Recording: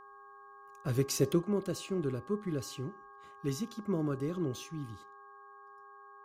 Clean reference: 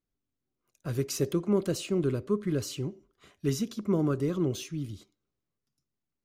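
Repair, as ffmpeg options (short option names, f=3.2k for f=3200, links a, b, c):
-af "bandreject=f=404.6:t=h:w=4,bandreject=f=809.2:t=h:w=4,bandreject=f=1.2138k:t=h:w=4,bandreject=f=1.6184k:t=h:w=4,bandreject=f=1.1k:w=30,asetnsamples=n=441:p=0,asendcmd='1.42 volume volume 6dB',volume=0dB"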